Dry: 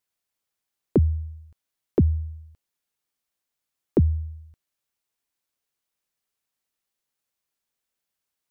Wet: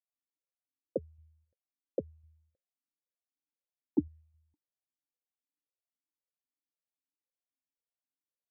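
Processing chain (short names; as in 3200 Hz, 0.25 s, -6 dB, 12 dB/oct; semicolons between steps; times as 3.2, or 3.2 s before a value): low-pass opened by the level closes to 480 Hz, open at -17.5 dBFS; notch 430 Hz, Q 12; vowel sequencer 7.6 Hz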